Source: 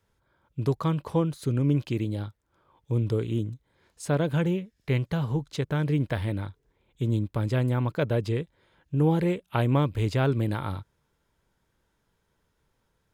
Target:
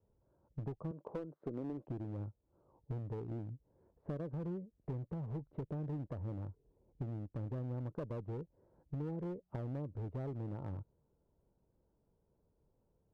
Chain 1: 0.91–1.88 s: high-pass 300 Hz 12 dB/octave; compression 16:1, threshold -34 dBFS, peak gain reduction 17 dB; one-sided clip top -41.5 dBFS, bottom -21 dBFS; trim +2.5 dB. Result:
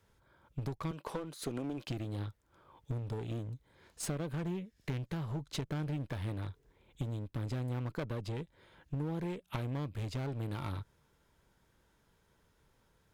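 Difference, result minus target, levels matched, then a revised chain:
1 kHz band +3.5 dB
0.91–1.88 s: high-pass 300 Hz 12 dB/octave; compression 16:1, threshold -34 dBFS, peak gain reduction 17 dB; four-pole ladder low-pass 840 Hz, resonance 20%; one-sided clip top -41.5 dBFS, bottom -21 dBFS; trim +2.5 dB

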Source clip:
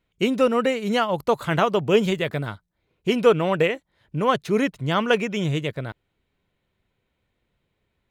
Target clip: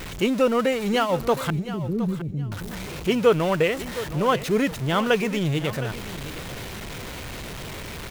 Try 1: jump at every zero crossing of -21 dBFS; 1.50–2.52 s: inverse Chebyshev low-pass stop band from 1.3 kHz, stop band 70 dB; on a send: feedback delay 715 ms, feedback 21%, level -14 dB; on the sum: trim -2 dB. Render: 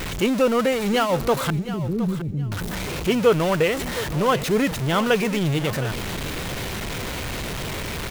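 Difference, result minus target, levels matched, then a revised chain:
jump at every zero crossing: distortion +5 dB
jump at every zero crossing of -27 dBFS; 1.50–2.52 s: inverse Chebyshev low-pass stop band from 1.3 kHz, stop band 70 dB; on a send: feedback delay 715 ms, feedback 21%, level -14 dB; on the sum: trim -2 dB

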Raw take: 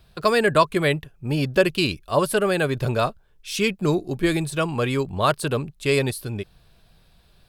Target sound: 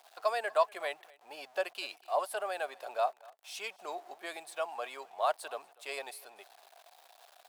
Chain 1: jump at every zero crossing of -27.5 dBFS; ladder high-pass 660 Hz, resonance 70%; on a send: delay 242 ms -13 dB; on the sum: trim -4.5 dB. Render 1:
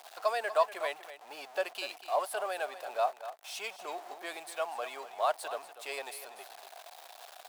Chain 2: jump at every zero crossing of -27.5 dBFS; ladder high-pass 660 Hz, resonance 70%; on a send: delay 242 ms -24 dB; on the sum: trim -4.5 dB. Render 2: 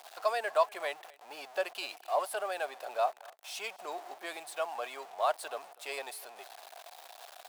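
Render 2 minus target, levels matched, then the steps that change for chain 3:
jump at every zero crossing: distortion +8 dB
change: jump at every zero crossing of -36.5 dBFS

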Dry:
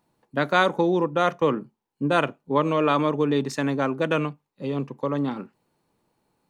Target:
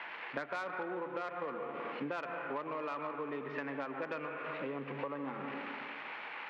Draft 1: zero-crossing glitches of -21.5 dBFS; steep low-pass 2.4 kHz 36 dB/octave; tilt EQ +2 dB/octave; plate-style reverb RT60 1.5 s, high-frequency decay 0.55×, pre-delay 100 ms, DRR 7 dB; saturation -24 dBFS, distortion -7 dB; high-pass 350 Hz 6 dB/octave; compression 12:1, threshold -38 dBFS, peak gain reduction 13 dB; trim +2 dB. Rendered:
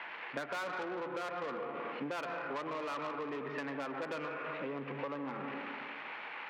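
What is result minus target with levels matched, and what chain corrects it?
saturation: distortion +8 dB
zero-crossing glitches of -21.5 dBFS; steep low-pass 2.4 kHz 36 dB/octave; tilt EQ +2 dB/octave; plate-style reverb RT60 1.5 s, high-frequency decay 0.55×, pre-delay 100 ms, DRR 7 dB; saturation -14.5 dBFS, distortion -16 dB; high-pass 350 Hz 6 dB/octave; compression 12:1, threshold -38 dBFS, peak gain reduction 19 dB; trim +2 dB

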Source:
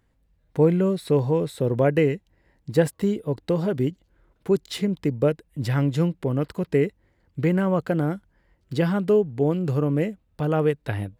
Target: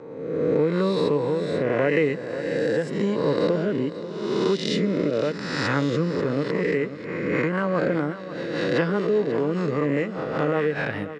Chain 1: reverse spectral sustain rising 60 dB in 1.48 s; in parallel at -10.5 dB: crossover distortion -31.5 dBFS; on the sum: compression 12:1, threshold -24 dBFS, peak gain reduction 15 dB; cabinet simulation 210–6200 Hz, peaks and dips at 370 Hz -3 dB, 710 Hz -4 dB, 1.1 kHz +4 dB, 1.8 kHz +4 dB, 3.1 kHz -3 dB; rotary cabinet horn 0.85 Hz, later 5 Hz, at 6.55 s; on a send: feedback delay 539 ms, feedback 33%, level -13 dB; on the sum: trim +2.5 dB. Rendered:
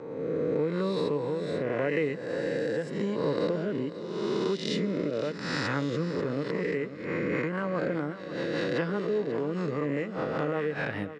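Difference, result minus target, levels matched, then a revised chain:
compression: peak gain reduction +7 dB
reverse spectral sustain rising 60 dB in 1.48 s; in parallel at -10.5 dB: crossover distortion -31.5 dBFS; on the sum: compression 12:1, threshold -16.5 dBFS, peak gain reduction 8.5 dB; cabinet simulation 210–6200 Hz, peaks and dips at 370 Hz -3 dB, 710 Hz -4 dB, 1.1 kHz +4 dB, 1.8 kHz +4 dB, 3.1 kHz -3 dB; rotary cabinet horn 0.85 Hz, later 5 Hz, at 6.55 s; on a send: feedback delay 539 ms, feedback 33%, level -13 dB; on the sum: trim +2.5 dB

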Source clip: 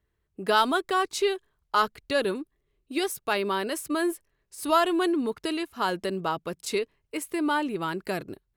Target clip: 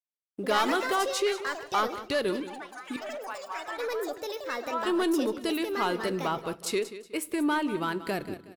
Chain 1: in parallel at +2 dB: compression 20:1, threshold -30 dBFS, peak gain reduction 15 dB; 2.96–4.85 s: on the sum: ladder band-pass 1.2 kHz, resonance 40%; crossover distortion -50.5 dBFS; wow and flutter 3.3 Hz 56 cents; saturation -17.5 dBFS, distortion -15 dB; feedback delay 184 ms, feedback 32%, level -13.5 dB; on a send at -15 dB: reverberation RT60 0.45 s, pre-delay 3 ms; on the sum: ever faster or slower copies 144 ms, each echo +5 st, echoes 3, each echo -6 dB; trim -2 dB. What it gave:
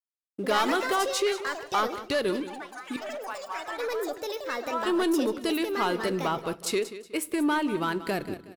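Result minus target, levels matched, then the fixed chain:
compression: peak gain reduction -8 dB; crossover distortion: distortion +5 dB
in parallel at +2 dB: compression 20:1, threshold -38.5 dBFS, peak gain reduction 23 dB; 2.96–4.85 s: on the sum: ladder band-pass 1.2 kHz, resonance 40%; crossover distortion -58.5 dBFS; wow and flutter 3.3 Hz 56 cents; saturation -17.5 dBFS, distortion -16 dB; feedback delay 184 ms, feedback 32%, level -13.5 dB; on a send at -15 dB: reverberation RT60 0.45 s, pre-delay 3 ms; on the sum: ever faster or slower copies 144 ms, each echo +5 st, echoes 3, each echo -6 dB; trim -2 dB

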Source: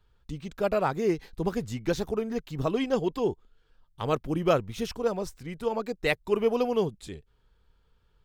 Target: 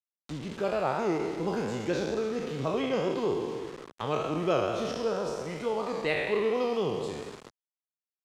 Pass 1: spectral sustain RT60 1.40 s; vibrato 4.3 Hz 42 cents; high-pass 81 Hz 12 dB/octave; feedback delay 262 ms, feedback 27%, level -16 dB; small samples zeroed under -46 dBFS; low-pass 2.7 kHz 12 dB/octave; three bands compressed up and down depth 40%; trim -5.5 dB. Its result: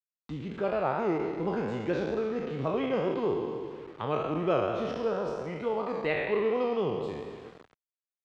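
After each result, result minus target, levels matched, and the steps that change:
8 kHz band -14.0 dB; small samples zeroed: distortion -9 dB
change: low-pass 7.2 kHz 12 dB/octave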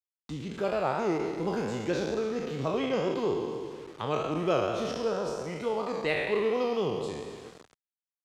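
small samples zeroed: distortion -9 dB
change: small samples zeroed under -39 dBFS

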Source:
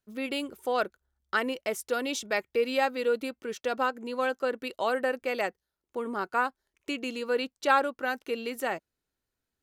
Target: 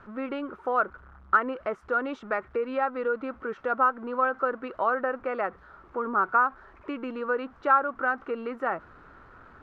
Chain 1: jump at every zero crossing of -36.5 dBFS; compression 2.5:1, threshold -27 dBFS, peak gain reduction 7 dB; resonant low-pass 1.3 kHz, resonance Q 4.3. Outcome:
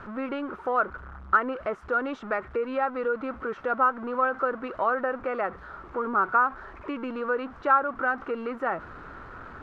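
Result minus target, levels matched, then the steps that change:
jump at every zero crossing: distortion +8 dB
change: jump at every zero crossing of -45 dBFS

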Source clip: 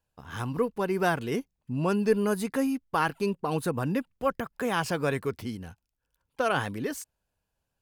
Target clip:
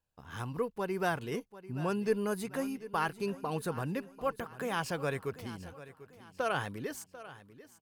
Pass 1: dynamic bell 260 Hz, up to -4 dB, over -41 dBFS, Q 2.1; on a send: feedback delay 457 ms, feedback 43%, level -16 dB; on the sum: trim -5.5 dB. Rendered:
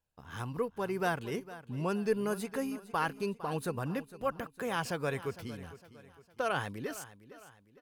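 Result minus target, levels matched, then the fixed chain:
echo 286 ms early
dynamic bell 260 Hz, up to -4 dB, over -41 dBFS, Q 2.1; on a send: feedback delay 743 ms, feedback 43%, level -16 dB; on the sum: trim -5.5 dB

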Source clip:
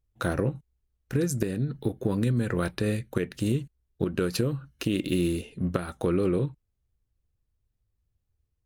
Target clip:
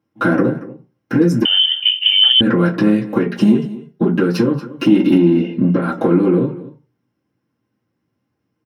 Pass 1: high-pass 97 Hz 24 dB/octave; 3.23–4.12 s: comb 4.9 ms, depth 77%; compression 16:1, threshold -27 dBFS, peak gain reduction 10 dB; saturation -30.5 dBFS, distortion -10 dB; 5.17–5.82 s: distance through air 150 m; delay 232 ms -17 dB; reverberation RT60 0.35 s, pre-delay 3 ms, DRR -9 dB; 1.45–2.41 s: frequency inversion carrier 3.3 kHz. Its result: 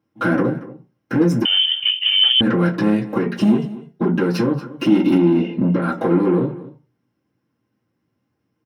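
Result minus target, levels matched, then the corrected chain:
saturation: distortion +8 dB
high-pass 97 Hz 24 dB/octave; 3.23–4.12 s: comb 4.9 ms, depth 77%; compression 16:1, threshold -27 dBFS, peak gain reduction 10 dB; saturation -23 dBFS, distortion -18 dB; 5.17–5.82 s: distance through air 150 m; delay 232 ms -17 dB; reverberation RT60 0.35 s, pre-delay 3 ms, DRR -9 dB; 1.45–2.41 s: frequency inversion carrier 3.3 kHz

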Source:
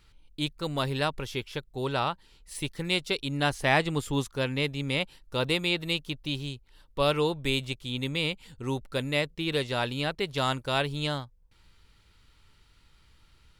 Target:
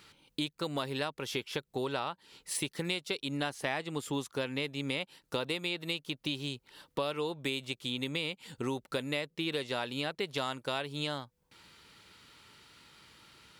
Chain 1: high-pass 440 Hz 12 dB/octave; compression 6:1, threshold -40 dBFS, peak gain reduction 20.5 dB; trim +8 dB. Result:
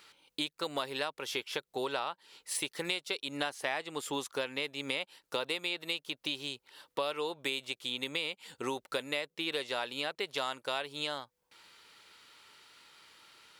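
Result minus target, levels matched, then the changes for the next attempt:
250 Hz band -5.0 dB
change: high-pass 190 Hz 12 dB/octave

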